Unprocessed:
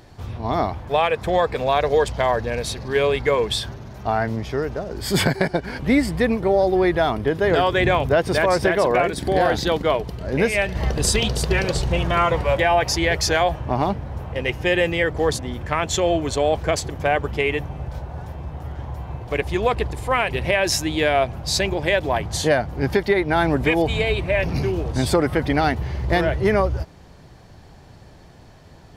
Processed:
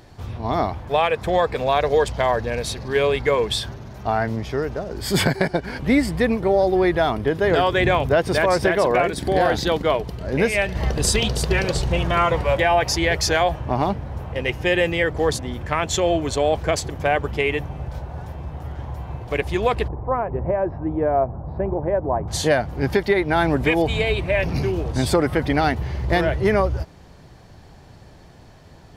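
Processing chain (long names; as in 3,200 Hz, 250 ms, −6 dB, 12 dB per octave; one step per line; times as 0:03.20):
0:19.88–0:22.28: low-pass filter 1,100 Hz 24 dB per octave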